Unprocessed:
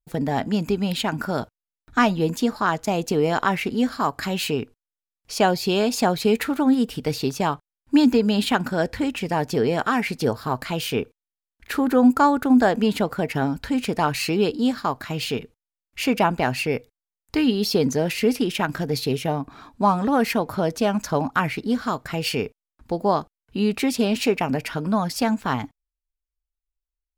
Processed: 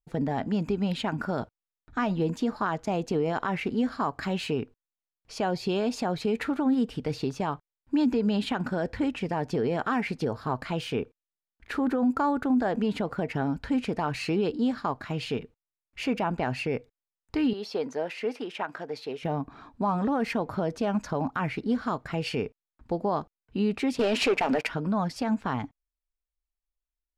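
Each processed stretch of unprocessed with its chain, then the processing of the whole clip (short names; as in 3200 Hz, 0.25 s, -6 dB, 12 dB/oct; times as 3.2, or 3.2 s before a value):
17.53–19.23 HPF 680 Hz + tilt -2.5 dB/oct
23.99–24.67 HPF 400 Hz + sample leveller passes 3
whole clip: LPF 9500 Hz 12 dB/oct; high shelf 3500 Hz -11 dB; limiter -15 dBFS; gain -3 dB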